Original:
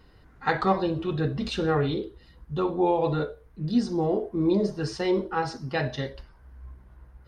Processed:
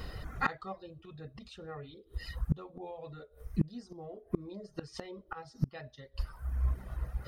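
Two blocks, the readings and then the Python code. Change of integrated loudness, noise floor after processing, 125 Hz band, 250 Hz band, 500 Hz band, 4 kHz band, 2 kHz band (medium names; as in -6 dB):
-12.5 dB, -63 dBFS, -6.5 dB, -14.0 dB, -18.5 dB, -14.0 dB, -9.0 dB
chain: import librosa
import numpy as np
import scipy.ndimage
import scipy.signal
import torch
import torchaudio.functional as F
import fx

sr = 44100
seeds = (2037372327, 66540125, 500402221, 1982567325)

y = fx.dereverb_blind(x, sr, rt60_s=0.74)
y = y + 0.36 * np.pad(y, (int(1.6 * sr / 1000.0), 0))[:len(y)]
y = fx.gate_flip(y, sr, shuts_db=-28.0, range_db=-32)
y = fx.high_shelf(y, sr, hz=6300.0, db=5.0)
y = y * 10.0 ** (12.5 / 20.0)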